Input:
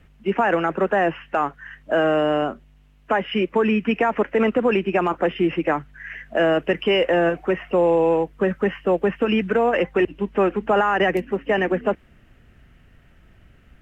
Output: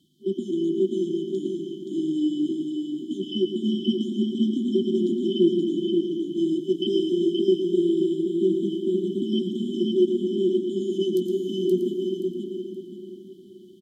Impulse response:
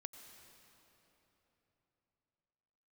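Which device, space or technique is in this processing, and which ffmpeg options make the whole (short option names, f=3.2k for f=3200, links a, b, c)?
PA in a hall: -filter_complex "[0:a]highpass=110,equalizer=f=3k:t=o:w=0.27:g=3.5,aecho=1:1:114:0.355[a];[1:a]atrim=start_sample=2205[b];[a][b]afir=irnorm=-1:irlink=0,asettb=1/sr,asplit=3[c][d][e];[c]atrim=end=2.144[f];[d]atrim=start=2.14:end=3.25,asetpts=PTS-STARTPTS,afade=t=in:d=0.004:c=qsin,afade=t=out:st=1.106:d=0.004:c=qsin,asplit=2[g][h];[h]adelay=16,volume=-4dB[i];[g][i]amix=inputs=2:normalize=0,atrim=end_sample=48951[j];[e]atrim=start=3.246[k];[f][j]acrossfade=d=0.004:c1=hsin:c2=qsin[l];[l][k]acrossfade=d=0.004:c1=qsin:c2=hsin,highpass=290,afftfilt=real='re*(1-between(b*sr/4096,390,3000))':imag='im*(1-between(b*sr/4096,390,3000))':win_size=4096:overlap=0.75,aecho=1:1:525|1050|1575|2100:0.631|0.177|0.0495|0.0139,volume=7.5dB"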